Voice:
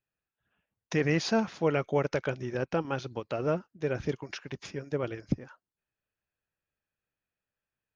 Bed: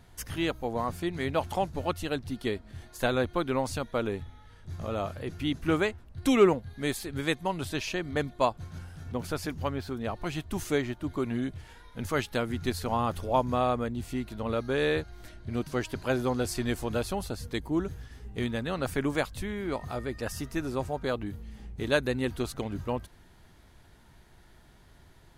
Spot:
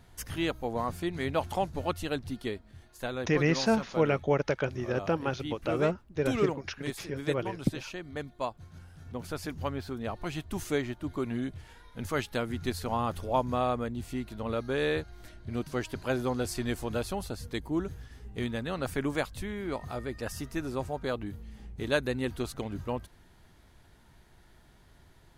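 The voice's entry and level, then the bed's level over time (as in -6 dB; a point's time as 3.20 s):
2.35 s, +1.0 dB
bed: 2.28 s -1 dB
2.80 s -8 dB
8.72 s -8 dB
9.61 s -2 dB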